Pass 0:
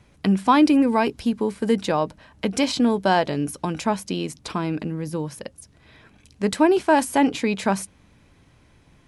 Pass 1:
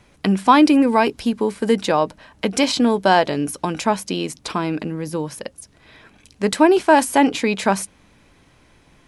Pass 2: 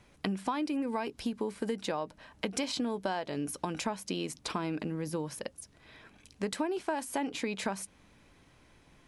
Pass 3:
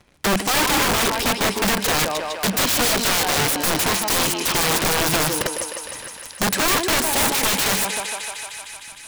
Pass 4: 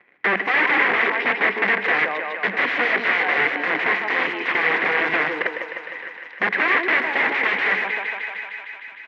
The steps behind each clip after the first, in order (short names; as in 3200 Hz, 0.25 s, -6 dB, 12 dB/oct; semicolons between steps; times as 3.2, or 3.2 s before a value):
bell 93 Hz -7 dB 2.4 oct; gain +5 dB
compressor 10:1, threshold -22 dBFS, peak gain reduction 15.5 dB; gain -7.5 dB
sample leveller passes 3; thinning echo 0.153 s, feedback 80%, high-pass 460 Hz, level -6 dB; wrapped overs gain 21.5 dB; gain +7 dB
speaker cabinet 490–2200 Hz, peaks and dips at 610 Hz -8 dB, 900 Hz -7 dB, 1300 Hz -6 dB, 2000 Hz +9 dB; echo 0.625 s -22 dB; reverb RT60 0.60 s, pre-delay 83 ms, DRR 16.5 dB; gain +4.5 dB